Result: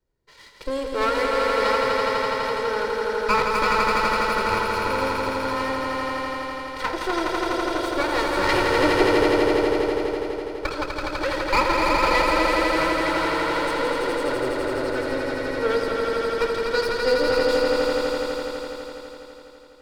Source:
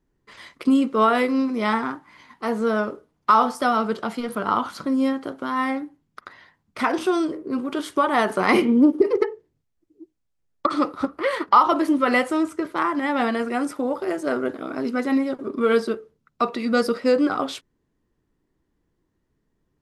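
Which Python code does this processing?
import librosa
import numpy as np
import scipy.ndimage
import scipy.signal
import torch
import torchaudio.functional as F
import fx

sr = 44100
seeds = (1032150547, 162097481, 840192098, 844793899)

y = fx.lower_of_two(x, sr, delay_ms=2.1)
y = fx.peak_eq(y, sr, hz=4400.0, db=6.5, octaves=0.4)
y = fx.echo_swell(y, sr, ms=83, loudest=5, wet_db=-4)
y = F.gain(torch.from_numpy(y), -4.5).numpy()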